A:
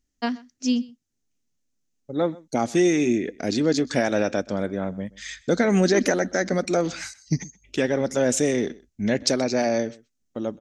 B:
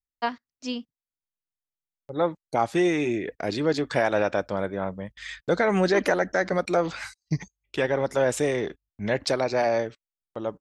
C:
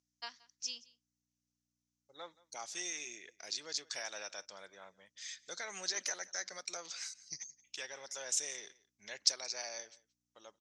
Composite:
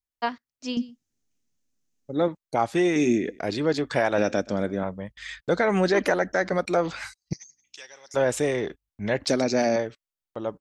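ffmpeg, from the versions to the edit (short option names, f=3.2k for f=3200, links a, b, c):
-filter_complex "[0:a]asplit=4[a][b][c][d];[1:a]asplit=6[e][f][g][h][i][j];[e]atrim=end=0.772[k];[a]atrim=start=0.768:end=2.282[l];[f]atrim=start=2.278:end=2.962[m];[b]atrim=start=2.958:end=3.392[n];[g]atrim=start=3.388:end=4.182[o];[c]atrim=start=4.178:end=4.832[p];[h]atrim=start=4.828:end=7.332[q];[2:a]atrim=start=7.328:end=8.142[r];[i]atrim=start=8.138:end=9.292[s];[d]atrim=start=9.288:end=9.762[t];[j]atrim=start=9.758[u];[k][l]acrossfade=d=0.004:c1=hsin:c2=hsin[v];[v][m]acrossfade=d=0.004:c1=hsin:c2=hsin[w];[w][n]acrossfade=d=0.004:c1=hsin:c2=hsin[x];[x][o]acrossfade=d=0.004:c1=hsin:c2=hsin[y];[y][p]acrossfade=d=0.004:c1=hsin:c2=hsin[z];[z][q]acrossfade=d=0.004:c1=hsin:c2=hsin[aa];[aa][r]acrossfade=d=0.004:c1=hsin:c2=hsin[ab];[ab][s]acrossfade=d=0.004:c1=hsin:c2=hsin[ac];[ac][t]acrossfade=d=0.004:c1=hsin:c2=hsin[ad];[ad][u]acrossfade=d=0.004:c1=hsin:c2=hsin"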